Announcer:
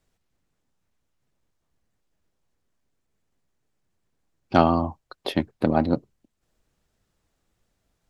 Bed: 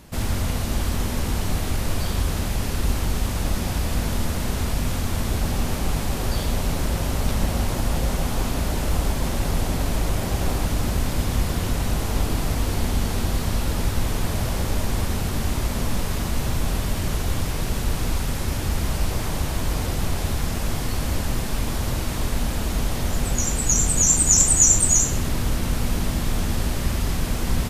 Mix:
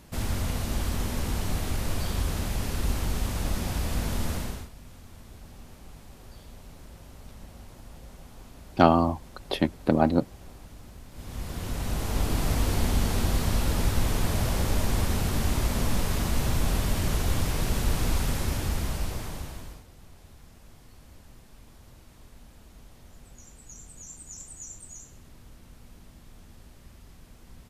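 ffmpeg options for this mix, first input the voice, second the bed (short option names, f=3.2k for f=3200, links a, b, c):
-filter_complex "[0:a]adelay=4250,volume=-0.5dB[a];[1:a]volume=16.5dB,afade=t=out:st=4.34:d=0.35:silence=0.11885,afade=t=in:st=11.11:d=1.42:silence=0.0841395,afade=t=out:st=18.28:d=1.56:silence=0.0562341[b];[a][b]amix=inputs=2:normalize=0"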